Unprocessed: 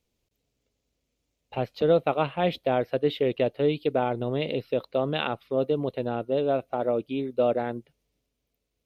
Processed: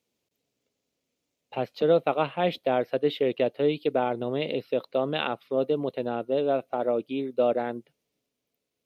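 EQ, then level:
high-pass filter 170 Hz 12 dB per octave
0.0 dB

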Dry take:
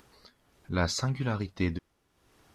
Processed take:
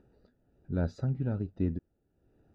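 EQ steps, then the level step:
moving average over 41 samples
0.0 dB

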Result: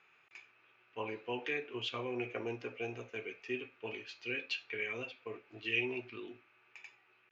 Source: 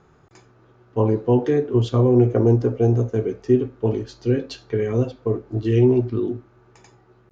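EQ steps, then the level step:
resonant band-pass 2,500 Hz, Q 7.6
+11.5 dB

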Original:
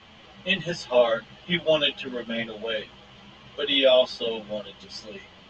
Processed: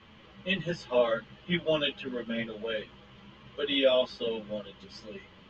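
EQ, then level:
parametric band 720 Hz −11 dB 0.36 octaves
high-shelf EQ 3,000 Hz −11 dB
−1.5 dB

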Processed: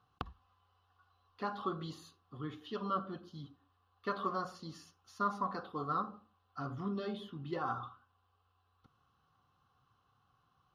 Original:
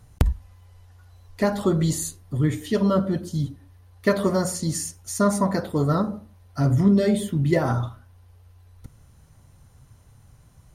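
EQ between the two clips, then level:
formant filter a
parametric band 2,400 Hz +6 dB 1.1 octaves
phaser with its sweep stopped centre 2,400 Hz, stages 6
+5.5 dB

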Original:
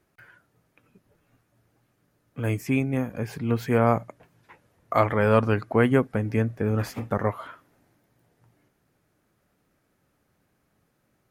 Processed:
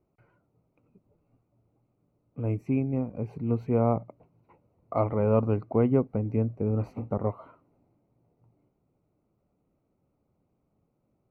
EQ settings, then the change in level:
moving average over 26 samples
−2.0 dB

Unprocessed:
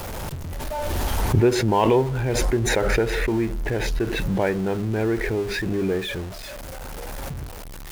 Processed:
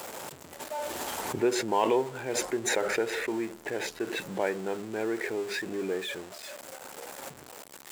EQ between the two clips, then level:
high-pass filter 320 Hz 12 dB per octave
parametric band 7,600 Hz +8 dB 0.24 octaves
−5.5 dB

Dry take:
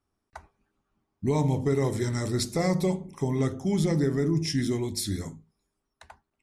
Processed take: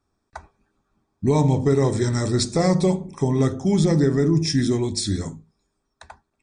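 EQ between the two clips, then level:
Butterworth band-reject 2,900 Hz, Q 6.9
linear-phase brick-wall low-pass 9,400 Hz
notch filter 2,100 Hz, Q 9.4
+6.5 dB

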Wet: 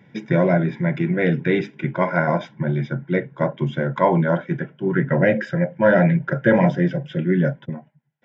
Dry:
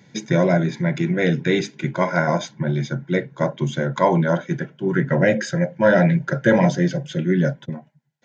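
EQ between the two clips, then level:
Savitzky-Golay smoothing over 25 samples
0.0 dB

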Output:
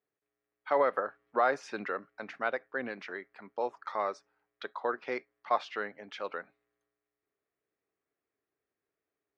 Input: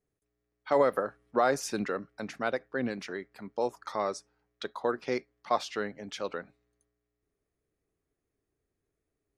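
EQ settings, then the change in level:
high-pass filter 1,000 Hz 6 dB per octave
low-pass filter 2,300 Hz 12 dB per octave
+3.5 dB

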